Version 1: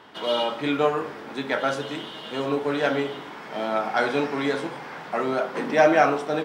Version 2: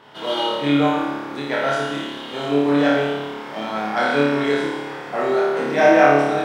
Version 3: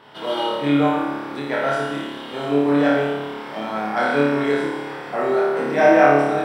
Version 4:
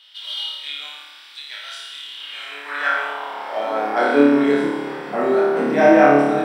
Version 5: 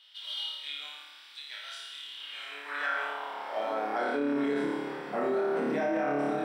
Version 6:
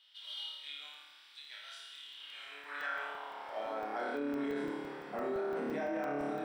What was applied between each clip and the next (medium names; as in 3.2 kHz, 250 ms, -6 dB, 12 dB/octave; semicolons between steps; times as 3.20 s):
bass shelf 160 Hz +4.5 dB; on a send: flutter echo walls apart 4.8 m, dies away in 1.1 s; on the sum: trim -1 dB
band-stop 6.6 kHz, Q 5.9; dynamic bell 3.7 kHz, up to -5 dB, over -39 dBFS, Q 1.1
high-pass sweep 3.5 kHz -> 200 Hz, 2.06–4.54 s; reverse echo 490 ms -23.5 dB
peak limiter -13 dBFS, peak gain reduction 11.5 dB; trim -8.5 dB
crackling interface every 0.17 s, samples 64, zero, from 0.94 s; trim -7 dB